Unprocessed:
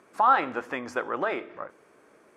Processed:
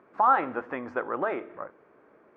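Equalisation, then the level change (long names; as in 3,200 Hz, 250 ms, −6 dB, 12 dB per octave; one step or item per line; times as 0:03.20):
low-pass filter 1,700 Hz 12 dB per octave
0.0 dB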